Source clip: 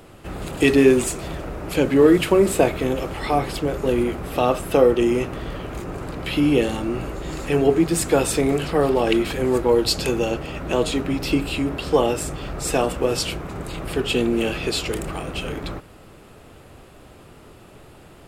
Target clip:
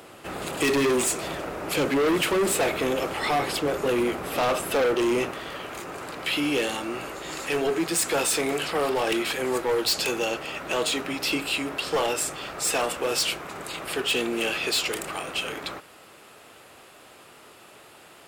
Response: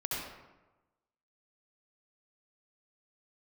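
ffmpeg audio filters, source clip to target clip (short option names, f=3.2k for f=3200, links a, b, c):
-af "asetnsamples=n=441:p=0,asendcmd='5.31 highpass f 1100',highpass=f=490:p=1,asoftclip=type=hard:threshold=-23.5dB,volume=3.5dB"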